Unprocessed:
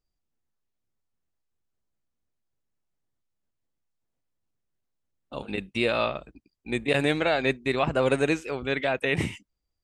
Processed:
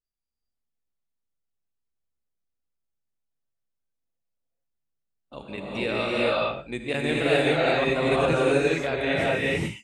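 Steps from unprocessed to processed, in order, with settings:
noise reduction from a noise print of the clip's start 9 dB
reverb whose tail is shaped and stops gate 460 ms rising, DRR −6.5 dB
level −5 dB

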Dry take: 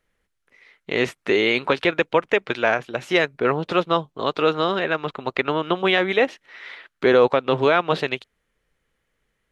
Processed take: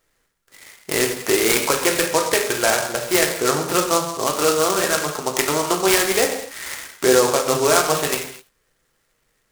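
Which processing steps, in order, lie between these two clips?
low-shelf EQ 310 Hz −7 dB
in parallel at +3 dB: downward compressor, threshold −29 dBFS, peak gain reduction 15.5 dB
on the sum: reverb whose tail is shaped and stops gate 280 ms falling, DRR 0.5 dB
short delay modulated by noise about 6,000 Hz, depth 0.077 ms
level −2 dB

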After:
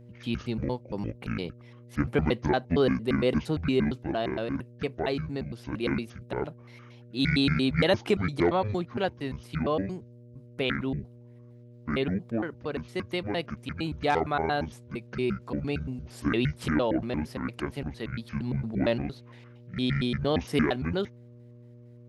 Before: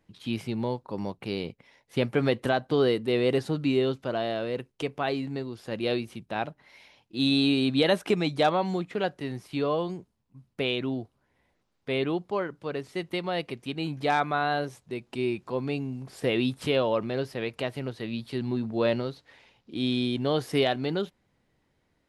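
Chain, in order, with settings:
pitch shifter gated in a rhythm −10 semitones, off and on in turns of 115 ms
hum with harmonics 120 Hz, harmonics 5, −50 dBFS −7 dB per octave

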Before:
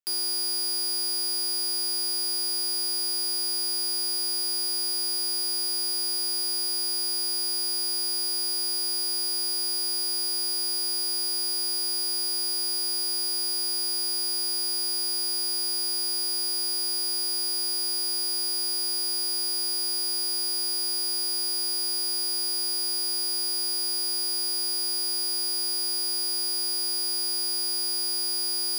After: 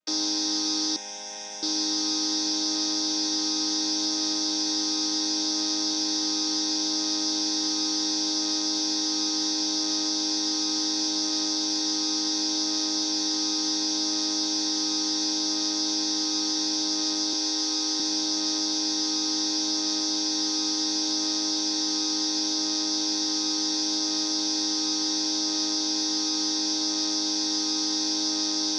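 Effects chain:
channel vocoder with a chord as carrier major triad, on G#3
0:17.33–0:18.00: high-pass filter 280 Hz 24 dB per octave
in parallel at −1 dB: brickwall limiter −25.5 dBFS, peak gain reduction 10 dB
0:00.96–0:01.63: on the sum: phaser with its sweep stopped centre 1,200 Hz, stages 6

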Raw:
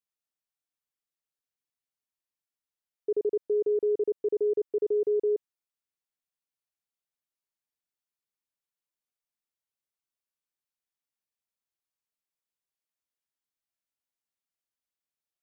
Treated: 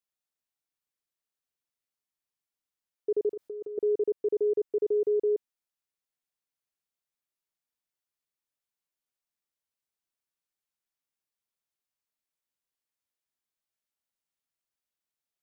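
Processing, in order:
0:03.30–0:03.78: compressor whose output falls as the input rises −37 dBFS, ratio −1

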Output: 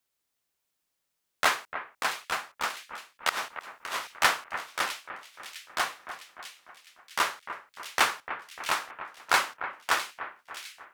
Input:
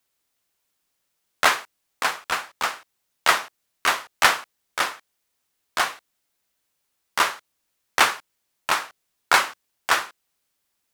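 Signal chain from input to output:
0:03.29–0:04.16: compressor whose output falls as the input rises −29 dBFS, ratio −1
echo with a time of its own for lows and highs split 2,300 Hz, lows 298 ms, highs 656 ms, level −11 dB
level −6 dB

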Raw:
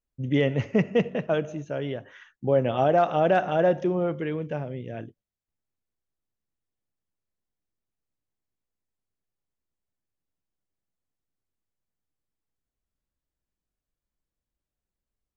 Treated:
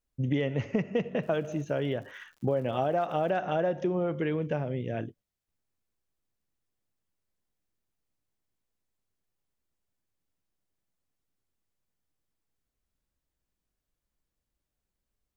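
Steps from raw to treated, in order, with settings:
downward compressor 6 to 1, threshold −28 dBFS, peak gain reduction 11.5 dB
0:01.22–0:03.30: surface crackle 180 per second −52 dBFS
level +3 dB

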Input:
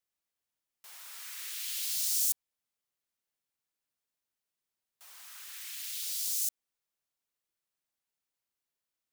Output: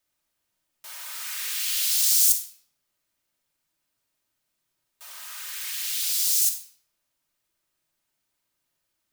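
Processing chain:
rectangular room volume 2,000 cubic metres, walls furnished, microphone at 2.7 metres
level +8.5 dB

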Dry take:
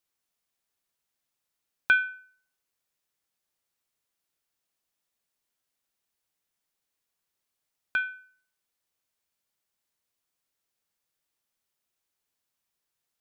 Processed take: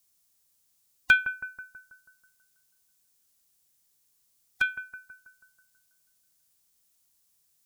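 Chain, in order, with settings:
bass and treble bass +9 dB, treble +14 dB
phase-vocoder stretch with locked phases 0.58×
on a send: bucket-brigade delay 162 ms, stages 2,048, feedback 54%, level −12.5 dB
on the sum: level +3 dB

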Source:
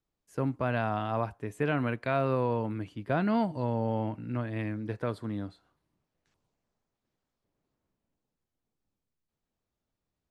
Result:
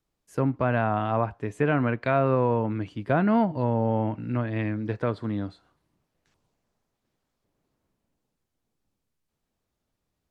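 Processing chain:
treble cut that deepens with the level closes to 2,300 Hz, closed at −25.5 dBFS
level +5.5 dB

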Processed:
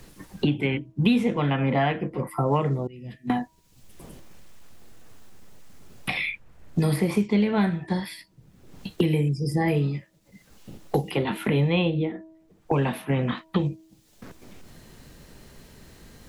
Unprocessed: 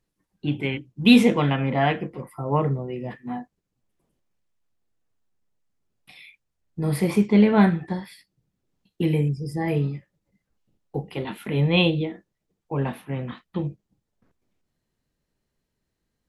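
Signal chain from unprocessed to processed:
hum removal 321.2 Hz, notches 3
0:02.87–0:03.30: guitar amp tone stack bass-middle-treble 10-0-1
multiband upward and downward compressor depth 100%

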